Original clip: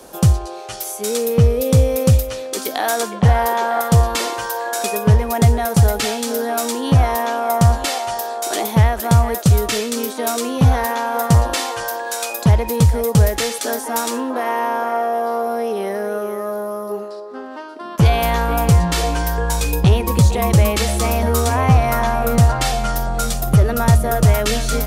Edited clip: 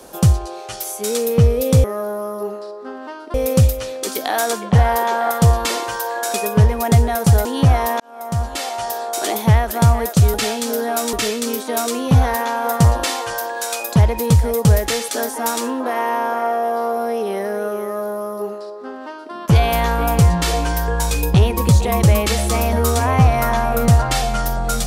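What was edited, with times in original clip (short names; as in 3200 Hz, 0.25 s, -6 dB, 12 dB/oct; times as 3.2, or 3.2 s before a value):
5.95–6.74 move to 9.63
7.29–8.23 fade in
16.33–17.83 copy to 1.84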